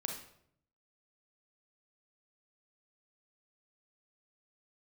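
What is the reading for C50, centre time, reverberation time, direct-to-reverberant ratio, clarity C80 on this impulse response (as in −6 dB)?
4.5 dB, 29 ms, 0.70 s, 2.0 dB, 9.0 dB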